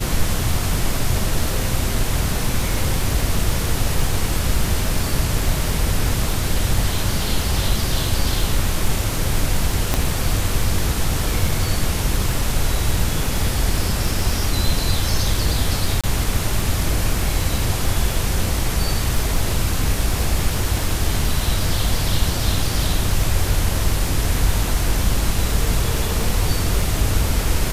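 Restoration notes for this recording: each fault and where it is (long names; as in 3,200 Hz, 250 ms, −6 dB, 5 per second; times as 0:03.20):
surface crackle 59 per second −26 dBFS
0:09.94: click −2 dBFS
0:16.01–0:16.04: drop-out 26 ms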